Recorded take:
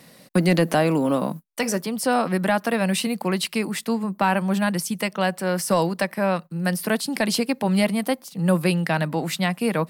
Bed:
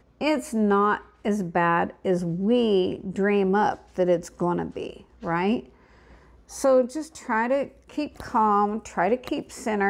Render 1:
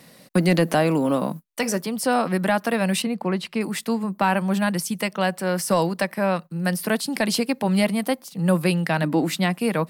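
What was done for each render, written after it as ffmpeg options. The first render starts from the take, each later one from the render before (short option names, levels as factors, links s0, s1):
-filter_complex "[0:a]asettb=1/sr,asplit=3[s0][s1][s2];[s0]atrim=end=3.024[s3];[s1]atrim=start=3.02:end=3.61,asetpts=PTS-STARTPTS,afade=t=in:d=0.004:c=qsin,afade=t=out:st=0.586:d=0.004:c=qsin,lowpass=f=1700:p=1[s4];[s2]atrim=start=3.606[s5];[s3][s4]acrossfade=d=0.004:c1=hsin:c2=qsin[s6];[s6][s5]acrossfade=d=0.004:c1=qsin:c2=hsin,asettb=1/sr,asplit=3[s7][s8][s9];[s7]atrim=end=9.034[s10];[s8]atrim=start=9.03:end=9.58,asetpts=PTS-STARTPTS,afade=t=in:d=0.004:c=qsin,afade=t=out:st=0.546:d=0.004:c=qsin,equalizer=f=300:t=o:w=0.55:g=10.5[s11];[s9]atrim=start=9.576[s12];[s10][s11]acrossfade=d=0.004:c1=hsin:c2=qsin[s13];[s13][s12]acrossfade=d=0.004:c1=qsin:c2=hsin"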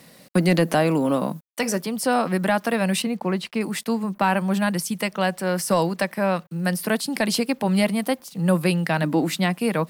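-af "acrusher=bits=8:mix=0:aa=0.5"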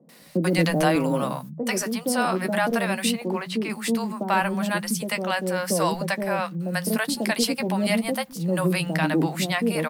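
-filter_complex "[0:a]asplit=2[s0][s1];[s1]adelay=13,volume=0.282[s2];[s0][s2]amix=inputs=2:normalize=0,acrossover=split=160|570[s3][s4][s5];[s5]adelay=90[s6];[s3]adelay=210[s7];[s7][s4][s6]amix=inputs=3:normalize=0"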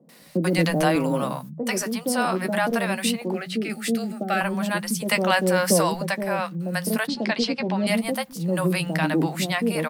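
-filter_complex "[0:a]asettb=1/sr,asplit=3[s0][s1][s2];[s0]atrim=end=3.344[s3];[s1]atrim=start=3.34:end=4.41,asetpts=PTS-STARTPTS,afade=t=in:d=0.004:c=qsin,afade=t=out:st=1.066:d=0.004:c=qsin,asuperstop=centerf=1000:order=8:qfactor=2.8[s4];[s2]atrim=start=4.406[s5];[s3][s4]acrossfade=d=0.004:c1=hsin:c2=qsin[s6];[s6][s5]acrossfade=d=0.004:c1=qsin:c2=hsin,asplit=3[s7][s8][s9];[s7]afade=t=out:st=5.05:d=0.02[s10];[s8]acontrast=37,afade=t=in:st=5.05:d=0.02,afade=t=out:st=5.8:d=0.02[s11];[s9]afade=t=in:st=5.8:d=0.02[s12];[s10][s11][s12]amix=inputs=3:normalize=0,asettb=1/sr,asplit=3[s13][s14][s15];[s13]atrim=end=7.074[s16];[s14]atrim=start=7.07:end=7.87,asetpts=PTS-STARTPTS,afade=t=in:d=0.004:c=qsin,afade=t=out:st=0.796:d=0.004:c=qsin,lowpass=f=5300:w=0.5412,lowpass=f=5300:w=1.3066[s17];[s15]atrim=start=7.866[s18];[s16][s17]acrossfade=d=0.004:c1=hsin:c2=qsin[s19];[s19][s18]acrossfade=d=0.004:c1=qsin:c2=hsin"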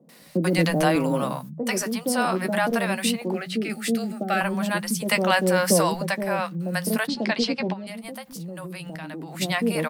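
-filter_complex "[0:a]asplit=3[s0][s1][s2];[s0]afade=t=out:st=7.72:d=0.02[s3];[s1]acompressor=threshold=0.0251:ratio=10:attack=3.2:release=140:knee=1:detection=peak,afade=t=in:st=7.72:d=0.02,afade=t=out:st=9.4:d=0.02[s4];[s2]afade=t=in:st=9.4:d=0.02[s5];[s3][s4][s5]amix=inputs=3:normalize=0"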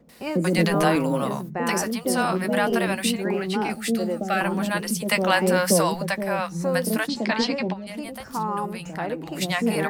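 -filter_complex "[1:a]volume=0.447[s0];[0:a][s0]amix=inputs=2:normalize=0"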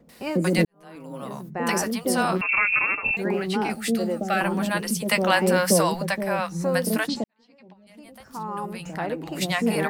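-filter_complex "[0:a]asettb=1/sr,asplit=3[s0][s1][s2];[s0]atrim=end=2.414[s3];[s1]atrim=start=2.41:end=3.17,asetpts=PTS-STARTPTS,afade=t=in:d=0.004:c=qsin,afade=t=out:st=0.756:d=0.004:c=qsin,lowpass=f=2500:t=q:w=0.5098,lowpass=f=2500:t=q:w=0.6013,lowpass=f=2500:t=q:w=0.9,lowpass=f=2500:t=q:w=2.563,afreqshift=-2900[s4];[s2]atrim=start=3.166[s5];[s3][s4]acrossfade=d=0.004:c1=hsin:c2=qsin[s6];[s6][s5]acrossfade=d=0.004:c1=qsin:c2=hsin,asplit=3[s7][s8][s9];[s7]atrim=end=0.65,asetpts=PTS-STARTPTS,afade=t=out:st=0.646:d=0.004:c=hsin[s10];[s8]atrim=start=0.65:end=7.24,asetpts=PTS-STARTPTS,afade=t=in:d=1.03:c=qua,afade=t=out:st=6.586:d=0.004:c=hsin[s11];[s9]atrim=start=7.24,asetpts=PTS-STARTPTS,afade=t=in:d=1.67:c=qua[s12];[s10][s11][s12]concat=n=3:v=0:a=1"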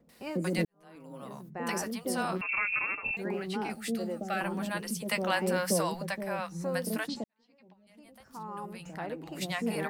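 -af "volume=0.355"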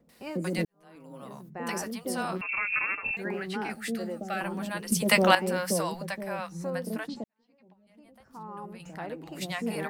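-filter_complex "[0:a]asettb=1/sr,asplit=3[s0][s1][s2];[s0]atrim=end=2.704[s3];[s1]atrim=start=2.7:end=4.1,asetpts=PTS-STARTPTS,afade=t=in:d=0.004:c=qsin,afade=t=out:st=1.396:d=0.004:c=qsin,equalizer=f=1700:t=o:w=0.66:g=8[s4];[s2]atrim=start=4.096[s5];[s3][s4]acrossfade=d=0.004:c1=hsin:c2=qsin[s6];[s6][s5]acrossfade=d=0.004:c1=qsin:c2=hsin,asettb=1/sr,asplit=3[s7][s8][s9];[s7]atrim=end=6.704[s10];[s8]atrim=start=6.7:end=8.8,asetpts=PTS-STARTPTS,afade=t=in:d=0.004:c=qsin,afade=t=out:st=2.096:d=0.004:c=qsin,highshelf=f=2300:g=-8[s11];[s9]atrim=start=8.796[s12];[s10][s11]acrossfade=d=0.004:c1=hsin:c2=qsin[s13];[s13][s12]acrossfade=d=0.004:c1=qsin:c2=hsin,asplit=3[s14][s15][s16];[s14]atrim=end=4.922[s17];[s15]atrim=start=4.918:end=5.352,asetpts=PTS-STARTPTS,volume=2.99[s18];[s16]atrim=start=5.348[s19];[s17][s18]acrossfade=d=0.004:c1=hsin:c2=hsin[s20];[s20][s19]acrossfade=d=0.004:c1=hsin:c2=hsin"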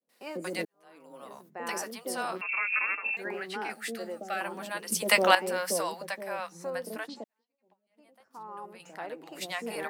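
-af "agate=range=0.0224:threshold=0.00224:ratio=3:detection=peak,highpass=380"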